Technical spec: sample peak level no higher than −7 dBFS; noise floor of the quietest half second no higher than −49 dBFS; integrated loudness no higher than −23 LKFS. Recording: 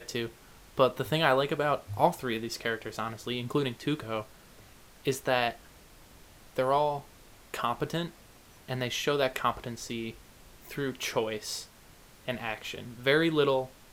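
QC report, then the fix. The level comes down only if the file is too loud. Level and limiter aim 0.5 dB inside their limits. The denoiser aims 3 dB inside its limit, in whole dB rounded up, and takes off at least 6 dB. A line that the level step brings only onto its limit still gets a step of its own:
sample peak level −8.5 dBFS: in spec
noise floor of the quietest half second −55 dBFS: in spec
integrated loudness −30.5 LKFS: in spec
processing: no processing needed

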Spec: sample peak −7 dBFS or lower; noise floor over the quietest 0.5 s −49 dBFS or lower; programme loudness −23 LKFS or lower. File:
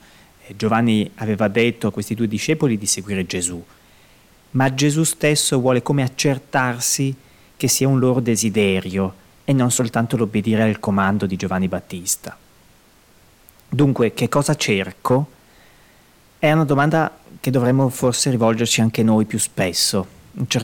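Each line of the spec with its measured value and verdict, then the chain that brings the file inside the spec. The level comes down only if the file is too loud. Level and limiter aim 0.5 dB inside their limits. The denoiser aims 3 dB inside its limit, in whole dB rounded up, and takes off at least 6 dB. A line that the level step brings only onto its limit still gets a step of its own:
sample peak −3.0 dBFS: out of spec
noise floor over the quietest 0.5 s −52 dBFS: in spec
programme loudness −19.0 LKFS: out of spec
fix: level −4.5 dB

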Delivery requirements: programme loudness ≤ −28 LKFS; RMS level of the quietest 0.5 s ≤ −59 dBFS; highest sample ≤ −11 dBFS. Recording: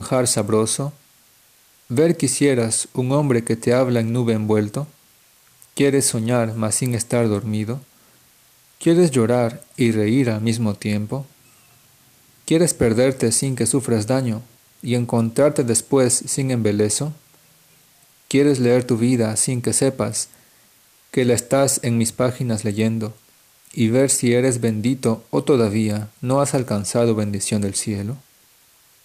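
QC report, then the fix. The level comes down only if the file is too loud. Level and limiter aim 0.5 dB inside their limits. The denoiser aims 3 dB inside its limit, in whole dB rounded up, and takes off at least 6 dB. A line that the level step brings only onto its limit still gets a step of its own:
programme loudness −19.5 LKFS: out of spec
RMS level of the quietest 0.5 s −54 dBFS: out of spec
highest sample −6.0 dBFS: out of spec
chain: level −9 dB

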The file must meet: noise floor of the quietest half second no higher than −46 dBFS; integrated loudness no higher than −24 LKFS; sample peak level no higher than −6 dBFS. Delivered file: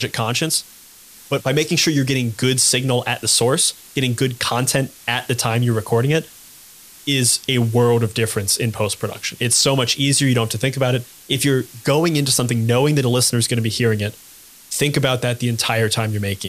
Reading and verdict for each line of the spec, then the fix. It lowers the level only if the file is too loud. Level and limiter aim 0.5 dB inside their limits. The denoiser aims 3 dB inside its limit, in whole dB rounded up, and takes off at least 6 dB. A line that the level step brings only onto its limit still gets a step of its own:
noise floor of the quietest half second −44 dBFS: out of spec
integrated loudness −18.0 LKFS: out of spec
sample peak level −3.0 dBFS: out of spec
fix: level −6.5 dB

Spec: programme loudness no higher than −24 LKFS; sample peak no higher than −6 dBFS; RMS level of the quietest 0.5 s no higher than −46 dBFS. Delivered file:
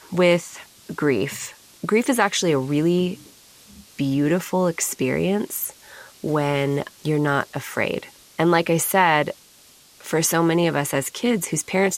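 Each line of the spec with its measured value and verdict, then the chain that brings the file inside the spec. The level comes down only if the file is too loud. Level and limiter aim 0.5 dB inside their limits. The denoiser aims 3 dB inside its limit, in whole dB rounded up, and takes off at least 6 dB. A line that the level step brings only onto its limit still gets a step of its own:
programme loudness −21.5 LKFS: out of spec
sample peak −5.0 dBFS: out of spec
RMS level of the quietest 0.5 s −51 dBFS: in spec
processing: level −3 dB

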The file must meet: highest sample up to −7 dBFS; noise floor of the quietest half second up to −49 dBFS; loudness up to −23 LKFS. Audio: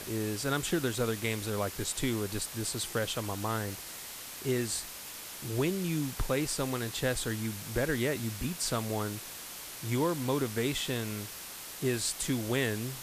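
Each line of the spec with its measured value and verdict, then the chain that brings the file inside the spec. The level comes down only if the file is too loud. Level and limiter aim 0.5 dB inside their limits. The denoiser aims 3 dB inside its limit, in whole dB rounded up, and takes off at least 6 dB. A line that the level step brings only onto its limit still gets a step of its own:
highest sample −18.0 dBFS: in spec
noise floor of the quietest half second −44 dBFS: out of spec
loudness −33.0 LKFS: in spec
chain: broadband denoise 8 dB, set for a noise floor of −44 dBFS

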